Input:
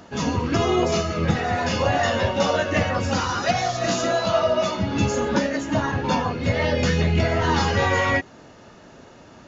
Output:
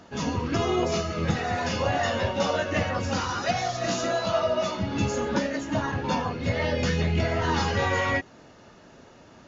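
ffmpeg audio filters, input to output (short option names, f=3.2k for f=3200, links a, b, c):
-filter_complex "[0:a]asettb=1/sr,asplit=3[a][b][c];[a]atrim=end=1.184[d];[b]atrim=start=1.18:end=1.68,asetpts=PTS-STARTPTS,afade=t=in:d=0.004:c=qsin,afade=t=out:st=0.496:d=0.004:c=qsin,highshelf=f=6k:g=6.5[e];[c]atrim=start=1.676[f];[d][e]acrossfade=d=0.004:c1=hsin:c2=qsin[g];[g][f]acrossfade=d=0.004:c1=qsin:c2=hsin,volume=-4.5dB" -ar 16000 -c:a libvorbis -b:a 64k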